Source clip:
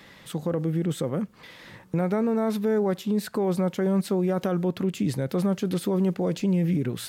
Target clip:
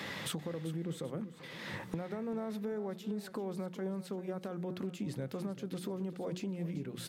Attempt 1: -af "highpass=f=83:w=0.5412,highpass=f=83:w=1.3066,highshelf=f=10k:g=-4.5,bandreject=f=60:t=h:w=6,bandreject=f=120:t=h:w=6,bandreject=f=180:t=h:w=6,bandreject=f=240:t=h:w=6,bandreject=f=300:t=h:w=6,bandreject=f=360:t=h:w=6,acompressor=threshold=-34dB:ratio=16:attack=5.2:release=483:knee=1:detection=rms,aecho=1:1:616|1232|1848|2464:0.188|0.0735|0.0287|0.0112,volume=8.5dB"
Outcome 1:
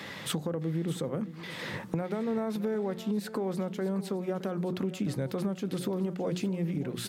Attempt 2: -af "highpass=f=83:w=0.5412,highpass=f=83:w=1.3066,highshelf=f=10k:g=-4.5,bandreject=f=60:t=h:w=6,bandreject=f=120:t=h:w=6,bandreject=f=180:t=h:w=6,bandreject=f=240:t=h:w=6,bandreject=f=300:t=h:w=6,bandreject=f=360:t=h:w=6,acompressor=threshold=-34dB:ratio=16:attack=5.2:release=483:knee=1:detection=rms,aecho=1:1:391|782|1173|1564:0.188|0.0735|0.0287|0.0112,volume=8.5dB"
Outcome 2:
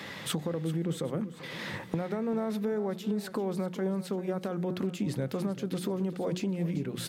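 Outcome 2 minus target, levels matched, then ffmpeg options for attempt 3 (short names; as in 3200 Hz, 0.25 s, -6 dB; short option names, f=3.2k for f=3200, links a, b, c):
compressor: peak gain reduction -7 dB
-af "highpass=f=83:w=0.5412,highpass=f=83:w=1.3066,highshelf=f=10k:g=-4.5,bandreject=f=60:t=h:w=6,bandreject=f=120:t=h:w=6,bandreject=f=180:t=h:w=6,bandreject=f=240:t=h:w=6,bandreject=f=300:t=h:w=6,bandreject=f=360:t=h:w=6,acompressor=threshold=-41.5dB:ratio=16:attack=5.2:release=483:knee=1:detection=rms,aecho=1:1:391|782|1173|1564:0.188|0.0735|0.0287|0.0112,volume=8.5dB"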